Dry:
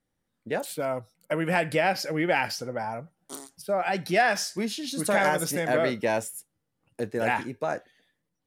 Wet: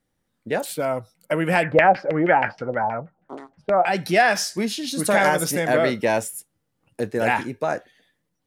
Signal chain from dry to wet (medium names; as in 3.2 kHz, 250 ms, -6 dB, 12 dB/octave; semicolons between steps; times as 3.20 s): 1.63–3.86 s: LFO low-pass saw down 6.3 Hz 550–2500 Hz; trim +5 dB